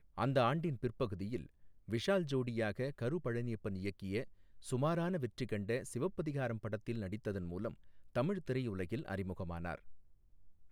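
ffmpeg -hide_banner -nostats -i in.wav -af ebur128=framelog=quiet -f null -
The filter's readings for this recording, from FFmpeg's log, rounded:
Integrated loudness:
  I:         -38.9 LUFS
  Threshold: -49.1 LUFS
Loudness range:
  LRA:         3.4 LU
  Threshold: -59.5 LUFS
  LRA low:   -41.3 LUFS
  LRA high:  -37.9 LUFS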